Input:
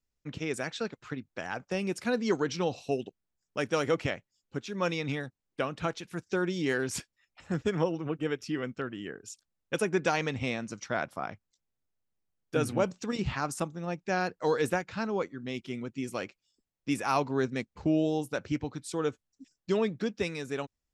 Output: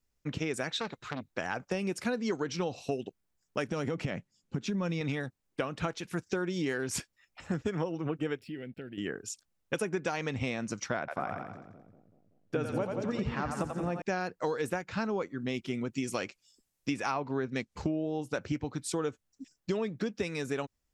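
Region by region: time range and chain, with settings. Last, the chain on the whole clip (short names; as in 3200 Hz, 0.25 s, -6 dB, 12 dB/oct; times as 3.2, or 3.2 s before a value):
0.7–1.31 bell 3800 Hz +9.5 dB 0.2 oct + core saturation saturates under 1700 Hz
3.68–5.01 LPF 11000 Hz + bell 180 Hz +11 dB 1.5 oct + compressor, threshold -29 dBFS
8.39–8.98 backlash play -59.5 dBFS + compressor 2:1, threshold -50 dBFS + fixed phaser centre 2700 Hz, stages 4
10.99–14.02 LPF 2300 Hz 6 dB/oct + split-band echo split 480 Hz, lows 0.19 s, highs 87 ms, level -6 dB
15.93–18.33 treble ducked by the level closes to 1700 Hz, closed at -22 dBFS + high shelf 3900 Hz +10.5 dB
whole clip: bell 3700 Hz -2 dB; compressor, threshold -34 dBFS; gain +5 dB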